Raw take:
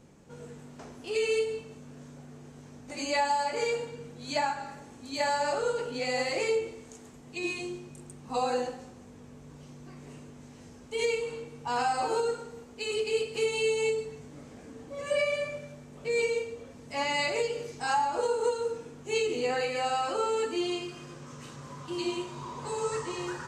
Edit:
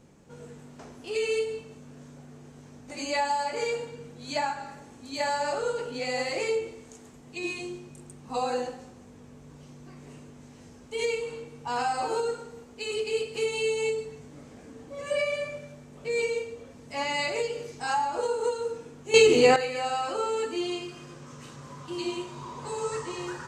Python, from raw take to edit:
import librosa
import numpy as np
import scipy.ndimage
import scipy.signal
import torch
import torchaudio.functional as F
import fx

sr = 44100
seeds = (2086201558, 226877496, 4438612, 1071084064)

y = fx.edit(x, sr, fx.clip_gain(start_s=19.14, length_s=0.42, db=11.5), tone=tone)